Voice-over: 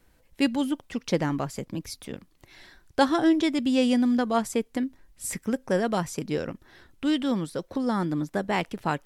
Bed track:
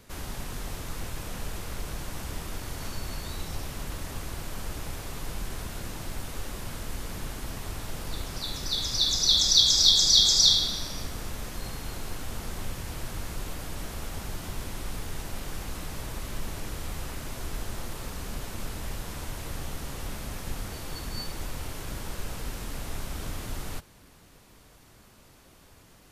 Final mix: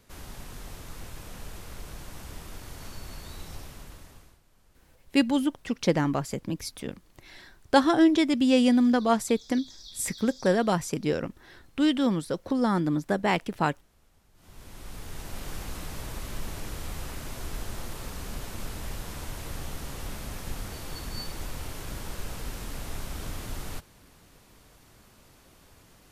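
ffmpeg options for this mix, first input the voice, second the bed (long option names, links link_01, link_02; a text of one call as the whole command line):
ffmpeg -i stem1.wav -i stem2.wav -filter_complex "[0:a]adelay=4750,volume=1.5dB[link_01];[1:a]volume=21dB,afade=type=out:start_time=3.53:duration=0.87:silence=0.0794328,afade=type=in:start_time=14.34:duration=1.15:silence=0.0446684[link_02];[link_01][link_02]amix=inputs=2:normalize=0" out.wav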